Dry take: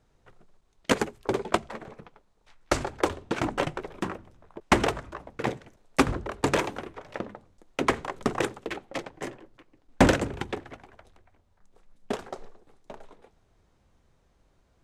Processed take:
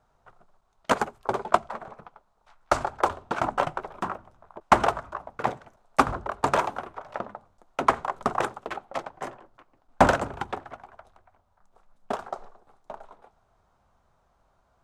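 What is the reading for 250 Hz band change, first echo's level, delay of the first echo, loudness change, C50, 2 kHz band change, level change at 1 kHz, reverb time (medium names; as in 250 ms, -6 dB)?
-5.0 dB, no echo, no echo, +1.5 dB, no reverb, 0.0 dB, +6.5 dB, no reverb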